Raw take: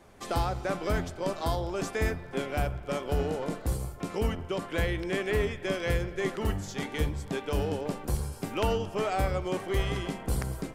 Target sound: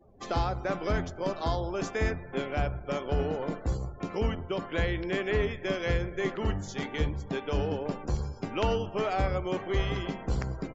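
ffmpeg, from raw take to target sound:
-af "aresample=16000,aresample=44100,afftdn=nr=28:nf=-51"

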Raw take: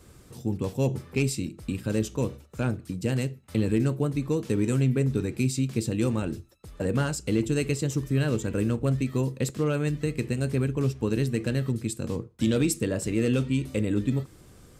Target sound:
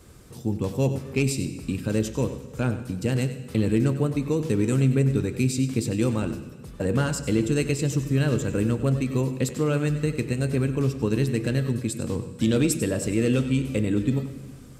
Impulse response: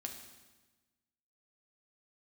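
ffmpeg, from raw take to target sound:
-filter_complex "[0:a]asplit=2[a][b];[1:a]atrim=start_sample=2205,asetrate=30429,aresample=44100,adelay=96[c];[b][c]afir=irnorm=-1:irlink=0,volume=-10.5dB[d];[a][d]amix=inputs=2:normalize=0,volume=2dB"

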